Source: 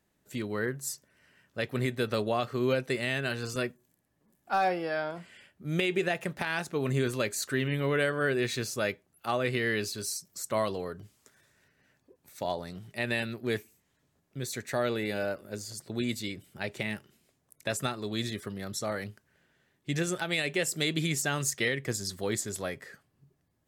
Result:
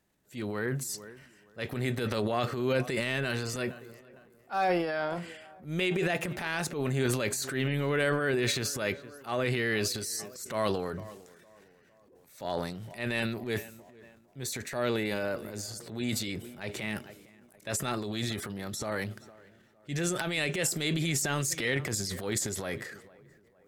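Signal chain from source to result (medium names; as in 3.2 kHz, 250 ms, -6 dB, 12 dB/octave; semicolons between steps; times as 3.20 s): tape echo 457 ms, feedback 59%, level -22.5 dB, low-pass 1.9 kHz; transient shaper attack -8 dB, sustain +9 dB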